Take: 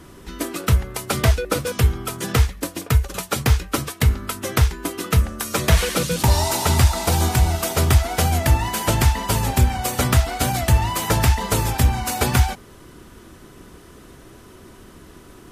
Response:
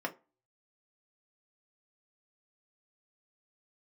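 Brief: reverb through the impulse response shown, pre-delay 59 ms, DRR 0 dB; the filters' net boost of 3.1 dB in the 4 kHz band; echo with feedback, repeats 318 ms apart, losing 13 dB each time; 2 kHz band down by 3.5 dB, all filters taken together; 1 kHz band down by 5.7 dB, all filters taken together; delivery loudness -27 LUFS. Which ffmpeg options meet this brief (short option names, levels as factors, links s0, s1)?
-filter_complex "[0:a]equalizer=f=1000:t=o:g=-7,equalizer=f=2000:t=o:g=-4,equalizer=f=4000:t=o:g=5.5,aecho=1:1:318|636|954:0.224|0.0493|0.0108,asplit=2[s0][s1];[1:a]atrim=start_sample=2205,adelay=59[s2];[s1][s2]afir=irnorm=-1:irlink=0,volume=0.596[s3];[s0][s3]amix=inputs=2:normalize=0,volume=0.398"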